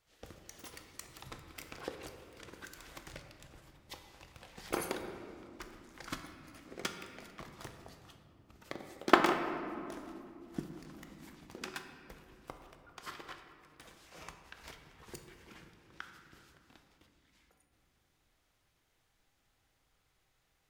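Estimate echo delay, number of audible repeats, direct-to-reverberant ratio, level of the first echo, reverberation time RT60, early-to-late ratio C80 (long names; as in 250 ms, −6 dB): no echo audible, no echo audible, 5.0 dB, no echo audible, 2.8 s, 7.5 dB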